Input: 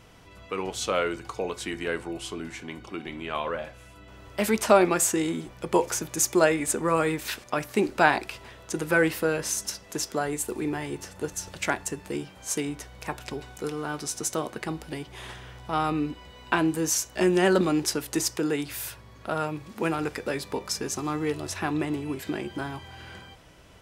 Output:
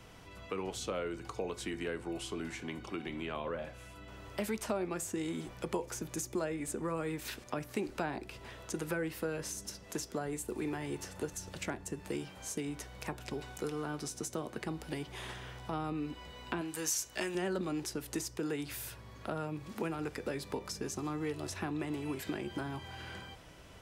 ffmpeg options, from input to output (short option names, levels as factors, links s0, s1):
-filter_complex "[0:a]acrossover=split=110|480[s0][s1][s2];[s0]acompressor=threshold=0.00316:ratio=4[s3];[s1]acompressor=threshold=0.0158:ratio=4[s4];[s2]acompressor=threshold=0.01:ratio=4[s5];[s3][s4][s5]amix=inputs=3:normalize=0,asettb=1/sr,asplit=3[s6][s7][s8];[s6]atrim=end=16.614[s9];[s7]atrim=start=16.61:end=17.35,asetpts=PTS-STARTPTS,afade=t=in:d=0.004:c=qsin,afade=t=out:st=0.736:d=0.004:c=qsin,tiltshelf=f=660:g=-7.5[s10];[s8]atrim=start=17.346[s11];[s9][s10]acrossfade=d=0.004:c1=hsin:c2=qsin[s12];[s12][s11]acrossfade=d=0.004:c1=qsin:c2=hsin,volume=0.841"